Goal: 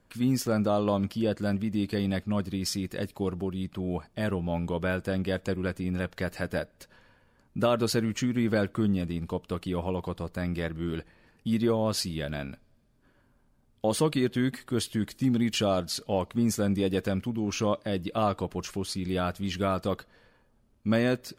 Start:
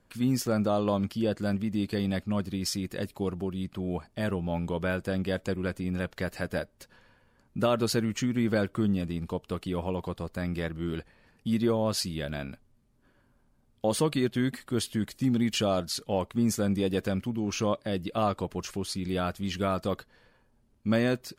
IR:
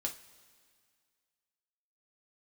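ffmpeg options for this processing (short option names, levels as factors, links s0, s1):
-filter_complex "[0:a]asplit=2[s0][s1];[1:a]atrim=start_sample=2205,lowpass=5300[s2];[s1][s2]afir=irnorm=-1:irlink=0,volume=0.106[s3];[s0][s3]amix=inputs=2:normalize=0"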